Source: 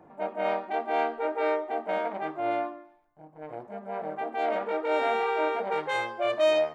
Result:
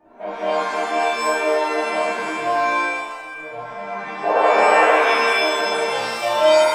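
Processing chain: painted sound noise, 4.23–4.91 s, 400–940 Hz -22 dBFS; touch-sensitive flanger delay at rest 3.5 ms, full sweep at -25.5 dBFS; pitch-shifted reverb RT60 1.2 s, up +7 st, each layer -2 dB, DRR -9 dB; trim -2 dB

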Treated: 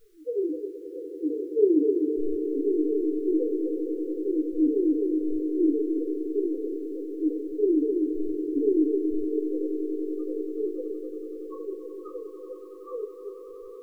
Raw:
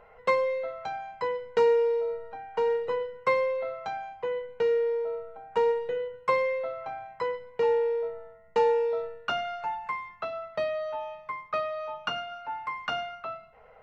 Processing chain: sawtooth pitch modulation -10 st, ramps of 261 ms; low-pass 3.5 kHz 12 dB/octave; tilt shelf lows +7.5 dB, about 1.4 kHz; loudest bins only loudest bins 1; echo with a slow build-up 94 ms, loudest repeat 8, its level -15 dB; reverberation RT60 0.30 s, pre-delay 6 ms, DRR 3.5 dB; word length cut 12-bit, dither triangular; brick-wall FIR band-stop 510–1100 Hz

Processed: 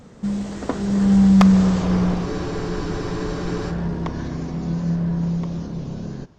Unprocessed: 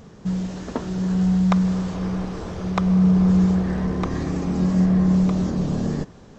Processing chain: one-sided wavefolder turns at -10.5 dBFS; Doppler pass-by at 1.75 s, 33 m/s, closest 28 m; spectral freeze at 2.27 s, 1.44 s; trim +7 dB

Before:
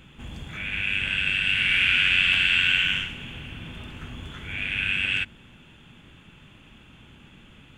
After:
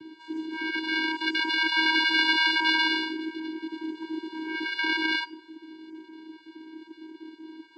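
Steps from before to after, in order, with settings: random holes in the spectrogram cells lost 24%; peaking EQ 230 Hz +6 dB 0.64 oct; vocoder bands 8, square 318 Hz; on a send: reverberation RT60 1.1 s, pre-delay 3 ms, DRR 14 dB

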